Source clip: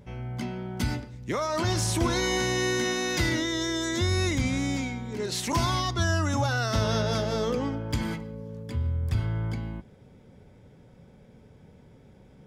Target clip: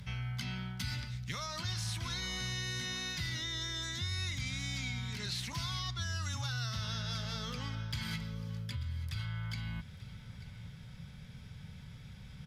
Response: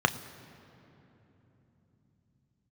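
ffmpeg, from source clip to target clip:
-filter_complex "[0:a]highshelf=frequency=9300:gain=8,areverse,acompressor=threshold=-34dB:ratio=6,areverse,firequalizer=gain_entry='entry(150,0);entry(310,-21);entry(1300,-1);entry(4000,7);entry(7200,-3)':delay=0.05:min_phase=1,acrossover=split=85|760|2700[link_01][link_02][link_03][link_04];[link_01]acompressor=threshold=-54dB:ratio=4[link_05];[link_02]acompressor=threshold=-45dB:ratio=4[link_06];[link_03]acompressor=threshold=-52dB:ratio=4[link_07];[link_04]acompressor=threshold=-48dB:ratio=4[link_08];[link_05][link_06][link_07][link_08]amix=inputs=4:normalize=0,asplit=2[link_09][link_10];[link_10]aecho=0:1:888:0.141[link_11];[link_09][link_11]amix=inputs=2:normalize=0,volume=6dB" -ar 32000 -c:a aac -b:a 96k

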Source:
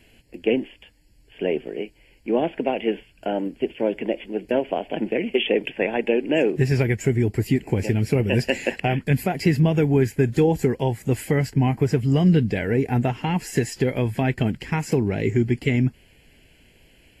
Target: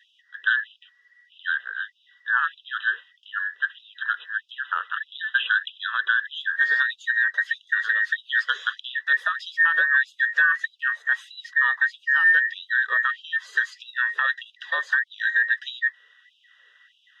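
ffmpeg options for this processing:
ffmpeg -i in.wav -af "afftfilt=real='real(if(between(b,1,1012),(2*floor((b-1)/92)+1)*92-b,b),0)':imag='imag(if(between(b,1,1012),(2*floor((b-1)/92)+1)*92-b,b),0)*if(between(b,1,1012),-1,1)':win_size=2048:overlap=0.75,lowpass=3300,afftfilt=real='re*gte(b*sr/1024,380*pow(2600/380,0.5+0.5*sin(2*PI*1.6*pts/sr)))':imag='im*gte(b*sr/1024,380*pow(2600/380,0.5+0.5*sin(2*PI*1.6*pts/sr)))':win_size=1024:overlap=0.75,volume=-1dB" out.wav

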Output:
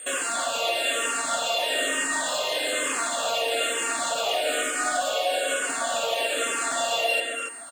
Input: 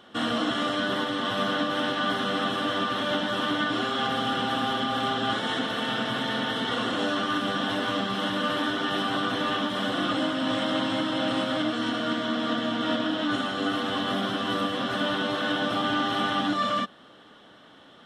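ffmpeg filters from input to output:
ffmpeg -i in.wav -filter_complex "[0:a]asplit=2[link_01][link_02];[link_02]alimiter=level_in=0.5dB:limit=-24dB:level=0:latency=1,volume=-0.5dB,volume=-1.5dB[link_03];[link_01][link_03]amix=inputs=2:normalize=0,aeval=exprs='val(0)+0.0224*sin(2*PI*3700*n/s)':channel_layout=same,aeval=exprs='sgn(val(0))*max(abs(val(0))-0.00531,0)':channel_layout=same,asplit=2[link_04][link_05];[link_05]adelay=669,lowpass=frequency=1800:poles=1,volume=-4dB,asplit=2[link_06][link_07];[link_07]adelay=669,lowpass=frequency=1800:poles=1,volume=0.26,asplit=2[link_08][link_09];[link_09]adelay=669,lowpass=frequency=1800:poles=1,volume=0.26,asplit=2[link_10][link_11];[link_11]adelay=669,lowpass=frequency=1800:poles=1,volume=0.26[link_12];[link_06][link_08][link_10][link_12]amix=inputs=4:normalize=0[link_13];[link_04][link_13]amix=inputs=2:normalize=0,asetrate=103194,aresample=44100,asplit=2[link_14][link_15];[link_15]afreqshift=-1.1[link_16];[link_14][link_16]amix=inputs=2:normalize=1" out.wav

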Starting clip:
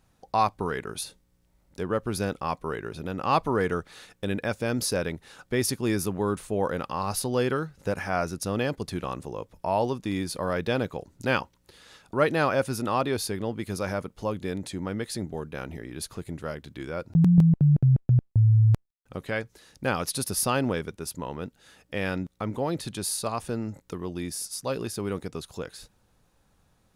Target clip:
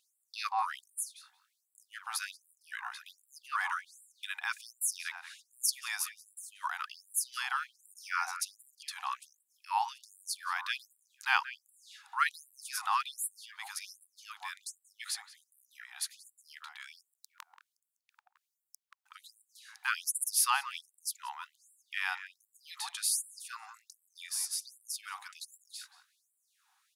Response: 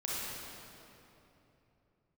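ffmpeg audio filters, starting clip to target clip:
-filter_complex "[0:a]asplit=2[link_01][link_02];[link_02]adelay=181,lowpass=frequency=1200:poles=1,volume=-6dB,asplit=2[link_03][link_04];[link_04]adelay=181,lowpass=frequency=1200:poles=1,volume=0.37,asplit=2[link_05][link_06];[link_06]adelay=181,lowpass=frequency=1200:poles=1,volume=0.37,asplit=2[link_07][link_08];[link_08]adelay=181,lowpass=frequency=1200:poles=1,volume=0.37[link_09];[link_01][link_03][link_05][link_07][link_09]amix=inputs=5:normalize=0,afftfilt=real='re*gte(b*sr/1024,710*pow(7400/710,0.5+0.5*sin(2*PI*1.3*pts/sr)))':imag='im*gte(b*sr/1024,710*pow(7400/710,0.5+0.5*sin(2*PI*1.3*pts/sr)))':win_size=1024:overlap=0.75"

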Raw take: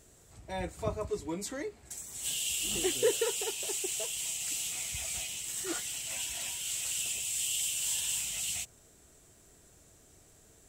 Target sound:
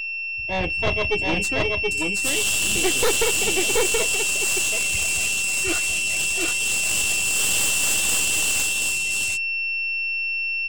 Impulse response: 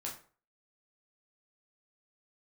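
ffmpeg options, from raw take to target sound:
-af "afftdn=noise_reduction=33:noise_floor=-43,agate=range=-33dB:threshold=-48dB:ratio=3:detection=peak,aeval=exprs='val(0)+0.0141*sin(2*PI*2700*n/s)':channel_layout=same,aecho=1:1:727:0.708,aeval=exprs='0.168*(cos(1*acos(clip(val(0)/0.168,-1,1)))-cos(1*PI/2))+0.0841*(cos(5*acos(clip(val(0)/0.168,-1,1)))-cos(5*PI/2))+0.075*(cos(6*acos(clip(val(0)/0.168,-1,1)))-cos(6*PI/2))':channel_layout=same"

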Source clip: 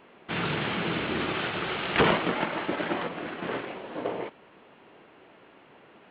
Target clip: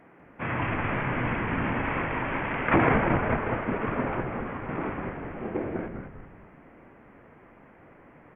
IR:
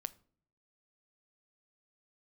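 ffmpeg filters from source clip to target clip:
-filter_complex "[0:a]asetrate=32193,aresample=44100,asplit=7[link_01][link_02][link_03][link_04][link_05][link_06][link_07];[link_02]adelay=197,afreqshift=-120,volume=-5dB[link_08];[link_03]adelay=394,afreqshift=-240,volume=-11.7dB[link_09];[link_04]adelay=591,afreqshift=-360,volume=-18.5dB[link_10];[link_05]adelay=788,afreqshift=-480,volume=-25.2dB[link_11];[link_06]adelay=985,afreqshift=-600,volume=-32dB[link_12];[link_07]adelay=1182,afreqshift=-720,volume=-38.7dB[link_13];[link_01][link_08][link_09][link_10][link_11][link_12][link_13]amix=inputs=7:normalize=0"

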